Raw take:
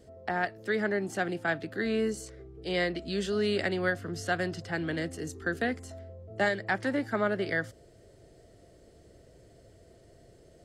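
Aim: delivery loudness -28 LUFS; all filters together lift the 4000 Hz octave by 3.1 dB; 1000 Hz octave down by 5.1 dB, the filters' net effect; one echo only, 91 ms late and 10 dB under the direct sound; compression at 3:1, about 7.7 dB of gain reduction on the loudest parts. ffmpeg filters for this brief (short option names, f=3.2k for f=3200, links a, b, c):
-af "equalizer=f=1k:t=o:g=-8.5,equalizer=f=4k:t=o:g=4.5,acompressor=threshold=-36dB:ratio=3,aecho=1:1:91:0.316,volume=10.5dB"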